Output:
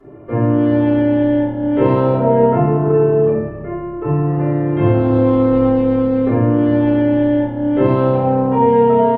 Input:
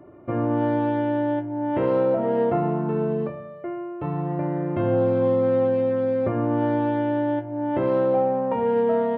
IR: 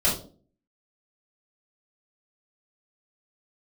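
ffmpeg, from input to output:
-filter_complex "[0:a]asettb=1/sr,asplit=3[a][b][c];[a]atrim=end=2.184[d];[b]atrim=start=2.18:end=4.37,asetpts=PTS-STARTPTS,afade=t=in:d=0.004:c=qsin,afade=t=out:st=2.186:d=0.004:c=qsin,lowpass=2.5k[e];[c]atrim=start=4.366[f];[d][e]acrossfade=d=0.004:c1=hsin:c2=qsin[g];[g][f]acrossfade=d=0.004:c1=qsin:c2=hsin,asplit=5[h][i][j][k][l];[i]adelay=286,afreqshift=-34,volume=-16.5dB[m];[j]adelay=572,afreqshift=-68,volume=-23.6dB[n];[k]adelay=858,afreqshift=-102,volume=-30.8dB[o];[l]adelay=1144,afreqshift=-136,volume=-37.9dB[p];[h][m][n][o][p]amix=inputs=5:normalize=0[q];[1:a]atrim=start_sample=2205,asetrate=29106,aresample=44100[r];[q][r]afir=irnorm=-1:irlink=0,volume=-8dB"

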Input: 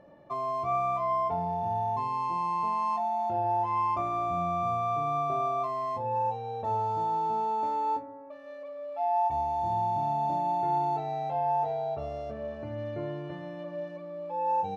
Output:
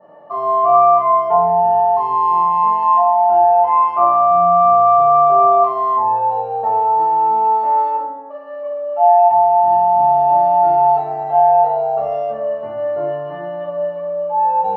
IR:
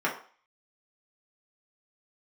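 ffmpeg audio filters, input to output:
-filter_complex "[0:a]bandpass=f=1.6k:t=q:w=0.6:csg=0[a];[1:a]atrim=start_sample=2205,asetrate=22932,aresample=44100[b];[a][b]afir=irnorm=-1:irlink=0,adynamicequalizer=threshold=0.0355:dfrequency=2700:dqfactor=1.1:tfrequency=2700:tqfactor=1.1:attack=5:release=100:ratio=0.375:range=2:mode=boostabove:tftype=bell"

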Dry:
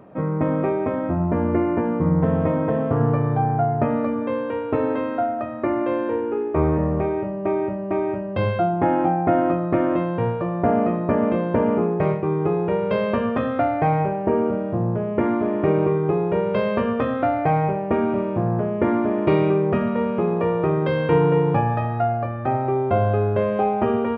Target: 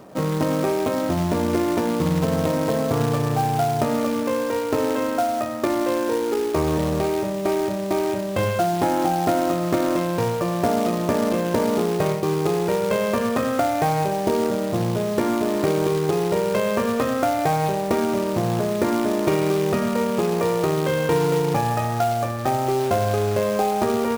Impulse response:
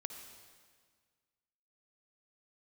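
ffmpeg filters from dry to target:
-filter_complex "[0:a]lowshelf=f=190:g=-5,acrossover=split=2000[a][b];[a]acrusher=bits=3:mode=log:mix=0:aa=0.000001[c];[c][b]amix=inputs=2:normalize=0,acompressor=threshold=-22dB:ratio=2.5,volume=3.5dB"

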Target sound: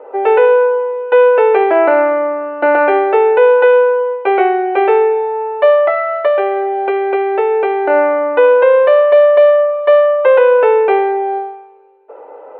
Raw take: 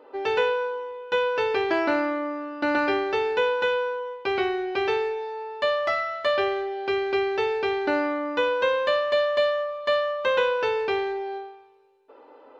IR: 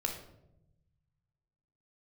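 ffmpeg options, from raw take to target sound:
-filter_complex "[0:a]asettb=1/sr,asplit=3[a][b][c];[a]atrim=end=5.844[d];[b]atrim=start=5.84:end=7.9,asetpts=PTS-STARTPTS,afade=t=in:d=0.004:c=qsin,afade=t=out:st=2.056:d=0.004:c=qsin,acompressor=threshold=-25dB:ratio=4[e];[c]atrim=start=7.896[f];[d][e]acrossfade=d=0.004:c1=hsin:c2=qsin[g];[g][f]acrossfade=d=0.004:c1=qsin:c2=hsin,highpass=f=400:w=0.5412,highpass=f=400:w=1.3066,equalizer=f=480:t=q:w=4:g=3,equalizer=f=720:t=q:w=4:g=4,equalizer=f=1.1k:t=q:w=4:g=-6,equalizer=f=1.7k:t=q:w=4:g=-7,lowpass=f=2k:w=0.5412,lowpass=f=2k:w=1.3066,alimiter=level_in=16dB:limit=-1dB:release=50:level=0:latency=1,volume=-1dB"

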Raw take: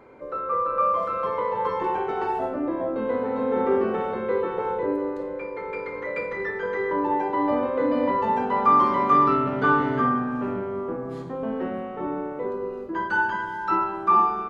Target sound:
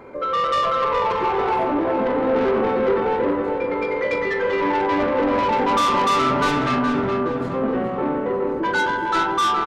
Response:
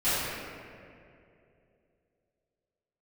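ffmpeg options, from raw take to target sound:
-filter_complex "[0:a]atempo=1.5,asoftclip=type=tanh:threshold=-25.5dB,asplit=2[a][b];[b]adelay=418,lowpass=f=3.5k:p=1,volume=-6dB,asplit=2[c][d];[d]adelay=418,lowpass=f=3.5k:p=1,volume=0.47,asplit=2[e][f];[f]adelay=418,lowpass=f=3.5k:p=1,volume=0.47,asplit=2[g][h];[h]adelay=418,lowpass=f=3.5k:p=1,volume=0.47,asplit=2[i][j];[j]adelay=418,lowpass=f=3.5k:p=1,volume=0.47,asplit=2[k][l];[l]adelay=418,lowpass=f=3.5k:p=1,volume=0.47[m];[a][c][e][g][i][k][m]amix=inputs=7:normalize=0,volume=8.5dB"

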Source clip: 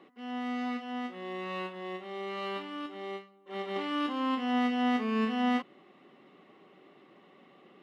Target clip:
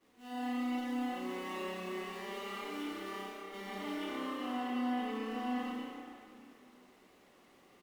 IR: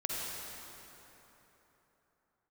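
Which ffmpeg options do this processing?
-filter_complex "[0:a]aeval=exprs='val(0)+0.5*0.0126*sgn(val(0))':c=same,agate=range=-33dB:threshold=-31dB:ratio=3:detection=peak,acompressor=threshold=-38dB:ratio=6,flanger=delay=4.1:depth=5.3:regen=-52:speed=0.71:shape=sinusoidal,asplit=5[a][b][c][d][e];[b]adelay=121,afreqshift=33,volume=-6.5dB[f];[c]adelay=242,afreqshift=66,volume=-15.1dB[g];[d]adelay=363,afreqshift=99,volume=-23.8dB[h];[e]adelay=484,afreqshift=132,volume=-32.4dB[i];[a][f][g][h][i]amix=inputs=5:normalize=0[j];[1:a]atrim=start_sample=2205,asetrate=66150,aresample=44100[k];[j][k]afir=irnorm=-1:irlink=0,volume=3dB"

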